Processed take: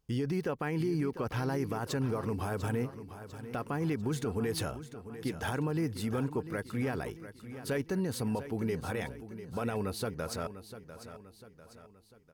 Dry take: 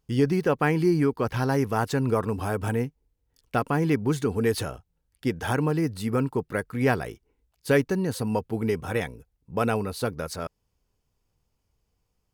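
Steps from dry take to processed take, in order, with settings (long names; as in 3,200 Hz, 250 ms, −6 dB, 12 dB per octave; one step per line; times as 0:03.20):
brickwall limiter −21 dBFS, peak gain reduction 11 dB
on a send: repeating echo 697 ms, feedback 47%, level −12.5 dB
on the sum: level −3.5 dB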